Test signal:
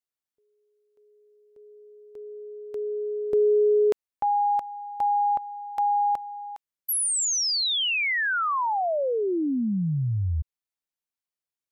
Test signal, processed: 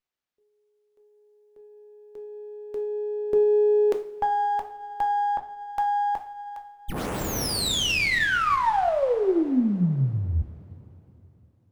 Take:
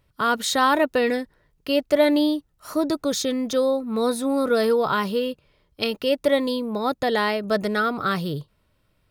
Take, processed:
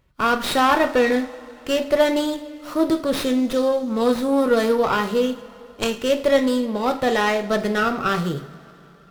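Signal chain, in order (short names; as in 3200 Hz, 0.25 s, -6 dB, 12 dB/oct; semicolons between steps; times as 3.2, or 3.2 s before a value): two-slope reverb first 0.41 s, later 3.5 s, from -20 dB, DRR 4.5 dB; running maximum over 5 samples; gain +1.5 dB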